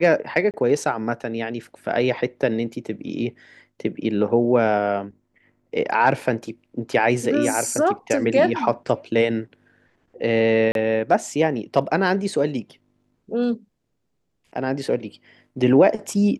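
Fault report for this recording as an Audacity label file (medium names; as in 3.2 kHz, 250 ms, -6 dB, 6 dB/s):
0.510000	0.540000	dropout 28 ms
10.720000	10.750000	dropout 32 ms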